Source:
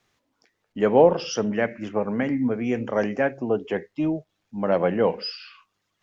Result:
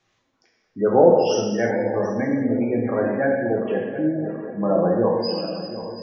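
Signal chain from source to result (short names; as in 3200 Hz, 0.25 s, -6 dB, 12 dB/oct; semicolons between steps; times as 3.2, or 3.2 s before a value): regenerating reverse delay 0.364 s, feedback 73%, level -10.5 dB; spectral gate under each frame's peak -20 dB strong; non-linear reverb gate 0.38 s falling, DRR -2 dB; gain -1 dB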